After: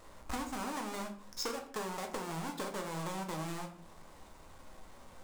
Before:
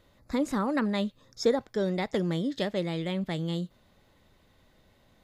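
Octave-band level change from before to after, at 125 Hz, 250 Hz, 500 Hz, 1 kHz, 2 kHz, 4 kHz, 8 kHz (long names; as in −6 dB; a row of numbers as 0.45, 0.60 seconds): −11.5, −13.0, −12.5, −2.0, −6.0, −6.0, +3.0 decibels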